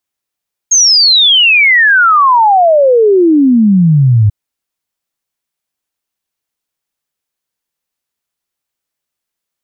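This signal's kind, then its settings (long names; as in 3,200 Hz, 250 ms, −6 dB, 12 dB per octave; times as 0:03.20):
exponential sine sweep 6,600 Hz → 100 Hz 3.59 s −4 dBFS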